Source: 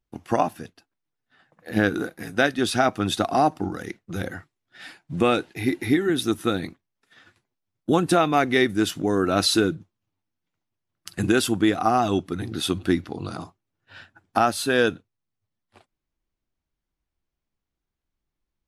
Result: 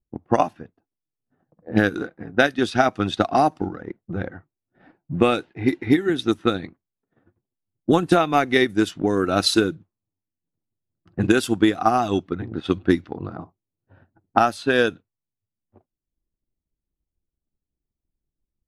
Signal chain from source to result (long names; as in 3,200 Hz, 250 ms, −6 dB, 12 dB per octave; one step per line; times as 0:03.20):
low-pass that shuts in the quiet parts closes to 470 Hz, open at −16.5 dBFS
transient designer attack +5 dB, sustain −5 dB